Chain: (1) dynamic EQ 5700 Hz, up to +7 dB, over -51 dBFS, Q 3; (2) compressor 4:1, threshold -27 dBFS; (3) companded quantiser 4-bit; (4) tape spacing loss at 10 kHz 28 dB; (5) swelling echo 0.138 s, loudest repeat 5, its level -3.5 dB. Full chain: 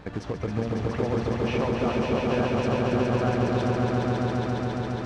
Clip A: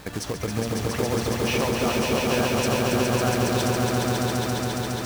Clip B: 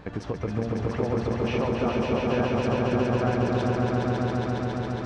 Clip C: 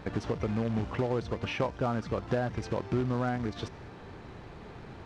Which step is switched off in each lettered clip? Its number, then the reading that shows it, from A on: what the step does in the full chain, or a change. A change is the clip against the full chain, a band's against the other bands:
4, 4 kHz band +9.0 dB; 3, distortion -13 dB; 5, echo-to-direct 6.0 dB to none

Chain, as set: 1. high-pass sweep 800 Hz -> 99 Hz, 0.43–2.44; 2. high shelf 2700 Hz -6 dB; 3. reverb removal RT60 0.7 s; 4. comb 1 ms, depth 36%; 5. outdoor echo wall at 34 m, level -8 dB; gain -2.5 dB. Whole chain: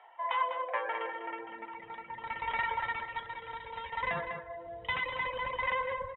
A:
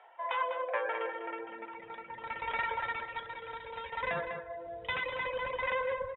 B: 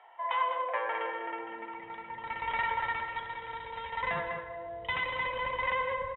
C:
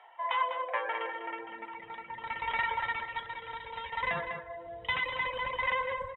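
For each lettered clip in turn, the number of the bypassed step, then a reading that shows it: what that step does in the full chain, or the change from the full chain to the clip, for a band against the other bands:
4, 500 Hz band +4.5 dB; 3, loudness change +1.5 LU; 2, 4 kHz band +3.0 dB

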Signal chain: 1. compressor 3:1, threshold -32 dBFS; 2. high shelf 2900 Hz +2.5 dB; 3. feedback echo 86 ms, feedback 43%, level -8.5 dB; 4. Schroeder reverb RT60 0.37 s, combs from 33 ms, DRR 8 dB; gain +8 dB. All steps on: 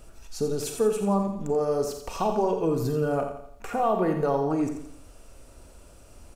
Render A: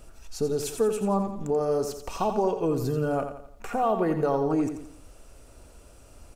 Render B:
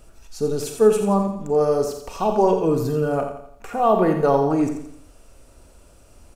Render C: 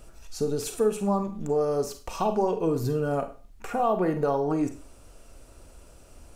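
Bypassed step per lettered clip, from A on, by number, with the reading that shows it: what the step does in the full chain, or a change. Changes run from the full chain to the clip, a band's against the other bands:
4, echo-to-direct -4.5 dB to -7.5 dB; 1, crest factor change +2.0 dB; 3, echo-to-direct -4.5 dB to -8.0 dB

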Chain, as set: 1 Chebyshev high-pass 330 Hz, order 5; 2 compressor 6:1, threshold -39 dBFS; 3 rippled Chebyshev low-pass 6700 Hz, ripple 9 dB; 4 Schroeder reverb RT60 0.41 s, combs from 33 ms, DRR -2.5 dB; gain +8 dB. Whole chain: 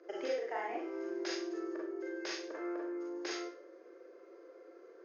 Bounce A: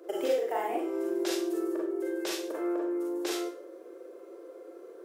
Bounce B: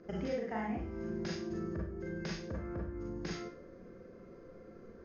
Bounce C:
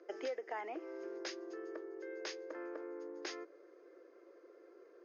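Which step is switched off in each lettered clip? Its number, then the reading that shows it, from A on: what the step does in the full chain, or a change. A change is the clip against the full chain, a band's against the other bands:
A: 3, 2 kHz band -6.0 dB; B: 1, 250 Hz band +4.0 dB; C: 4, 250 Hz band -3.5 dB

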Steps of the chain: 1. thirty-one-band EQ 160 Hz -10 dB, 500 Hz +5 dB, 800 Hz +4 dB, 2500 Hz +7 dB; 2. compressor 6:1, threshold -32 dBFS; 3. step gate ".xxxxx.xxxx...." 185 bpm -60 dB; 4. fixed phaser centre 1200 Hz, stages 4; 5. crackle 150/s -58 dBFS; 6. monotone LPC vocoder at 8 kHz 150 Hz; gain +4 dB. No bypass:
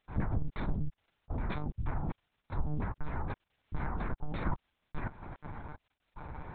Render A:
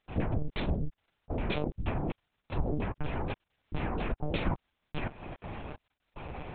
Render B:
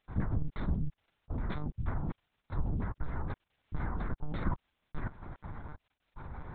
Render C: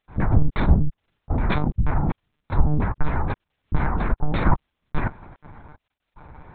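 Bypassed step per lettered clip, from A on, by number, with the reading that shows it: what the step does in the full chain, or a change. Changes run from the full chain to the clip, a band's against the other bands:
4, 500 Hz band +5.5 dB; 1, 125 Hz band +2.5 dB; 2, mean gain reduction 10.5 dB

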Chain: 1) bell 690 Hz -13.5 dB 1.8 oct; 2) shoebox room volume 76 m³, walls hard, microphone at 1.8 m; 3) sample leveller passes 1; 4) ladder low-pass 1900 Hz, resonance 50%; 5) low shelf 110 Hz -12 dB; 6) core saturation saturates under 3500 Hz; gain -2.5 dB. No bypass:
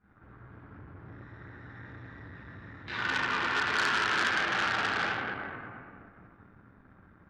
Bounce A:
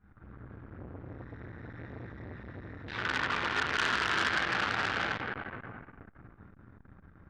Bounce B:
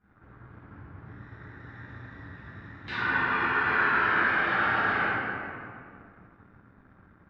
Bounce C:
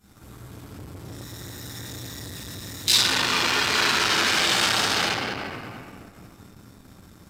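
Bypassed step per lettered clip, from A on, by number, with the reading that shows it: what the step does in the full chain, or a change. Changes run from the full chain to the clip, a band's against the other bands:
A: 5, 125 Hz band +4.0 dB; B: 6, crest factor change -3.5 dB; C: 4, 8 kHz band +12.0 dB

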